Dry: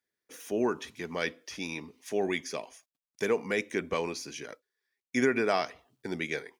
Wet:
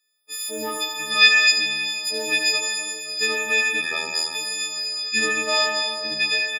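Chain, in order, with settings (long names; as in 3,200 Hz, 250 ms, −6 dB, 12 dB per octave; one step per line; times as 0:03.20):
every partial snapped to a pitch grid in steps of 6 semitones
on a send at −4 dB: spectral tilt +1.5 dB per octave + convolution reverb RT60 3.4 s, pre-delay 95 ms
0:01.11–0:01.52: on the sum: gain on a spectral selection 930–8,500 Hz +8 dB
single-tap delay 85 ms −8.5 dB
0:03.81–0:04.35: ring modulation 40 Hz
in parallel at −9 dB: soft clipping −24 dBFS, distortion −9 dB
on the sum: meter weighting curve D
level −4.5 dB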